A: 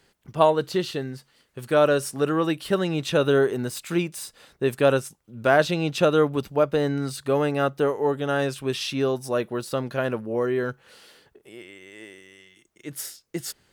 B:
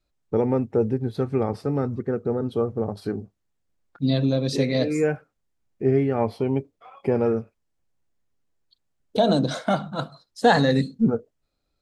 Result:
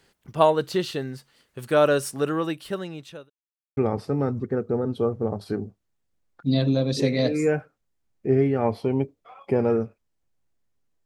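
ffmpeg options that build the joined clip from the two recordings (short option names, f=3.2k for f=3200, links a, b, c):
-filter_complex "[0:a]apad=whole_dur=11.05,atrim=end=11.05,asplit=2[a][b];[a]atrim=end=3.3,asetpts=PTS-STARTPTS,afade=t=out:st=2.05:d=1.25[c];[b]atrim=start=3.3:end=3.77,asetpts=PTS-STARTPTS,volume=0[d];[1:a]atrim=start=1.33:end=8.61,asetpts=PTS-STARTPTS,afade=t=in:d=0.004:c=hsin[e];[c][d][e]concat=n=3:v=0:a=1"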